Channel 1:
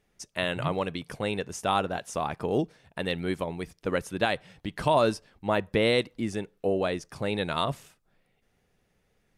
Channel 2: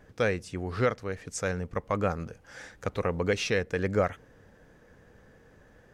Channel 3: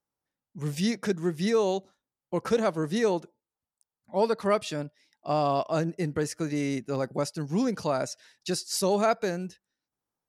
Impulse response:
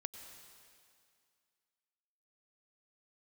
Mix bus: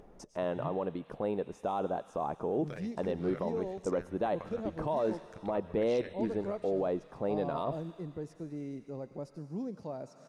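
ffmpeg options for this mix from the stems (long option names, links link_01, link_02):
-filter_complex "[0:a]equalizer=frequency=95:width=0.81:gain=-12,volume=0.5dB,asplit=3[link_01][link_02][link_03];[link_02]volume=-18.5dB[link_04];[1:a]acompressor=threshold=-35dB:ratio=2,tremolo=f=84:d=0.974,adelay=2500,volume=-8.5dB[link_05];[2:a]adelay=2000,volume=-13dB,asplit=2[link_06][link_07];[link_07]volume=-8.5dB[link_08];[link_03]apad=whole_len=372146[link_09];[link_05][link_09]sidechaingate=range=-33dB:threshold=-55dB:ratio=16:detection=peak[link_10];[link_01][link_06]amix=inputs=2:normalize=0,lowpass=frequency=1100:width=0.5412,lowpass=frequency=1100:width=1.3066,alimiter=limit=-23dB:level=0:latency=1:release=25,volume=0dB[link_11];[3:a]atrim=start_sample=2205[link_12];[link_04][link_08]amix=inputs=2:normalize=0[link_13];[link_13][link_12]afir=irnorm=-1:irlink=0[link_14];[link_10][link_11][link_14]amix=inputs=3:normalize=0,acompressor=mode=upward:threshold=-40dB:ratio=2.5,highshelf=frequency=10000:gain=-6.5"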